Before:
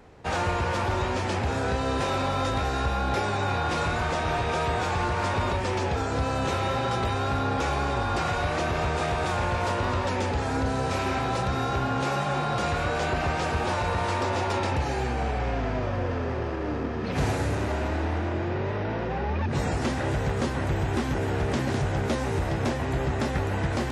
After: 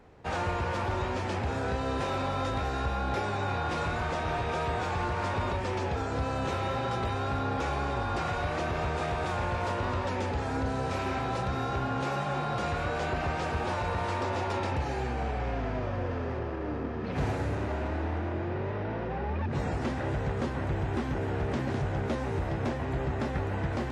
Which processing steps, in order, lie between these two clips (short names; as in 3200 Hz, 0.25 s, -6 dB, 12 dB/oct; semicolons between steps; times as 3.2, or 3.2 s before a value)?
high shelf 4300 Hz -6 dB, from 16.39 s -11.5 dB; gain -4 dB